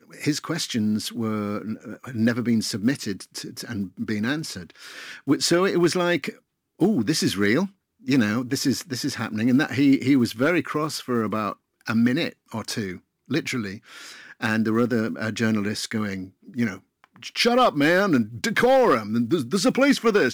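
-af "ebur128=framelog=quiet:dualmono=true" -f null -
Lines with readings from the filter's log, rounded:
Integrated loudness:
  I:         -20.1 LUFS
  Threshold: -30.8 LUFS
Loudness range:
  LRA:         5.5 LU
  Threshold: -41.0 LUFS
  LRA low:   -23.9 LUFS
  LRA high:  -18.4 LUFS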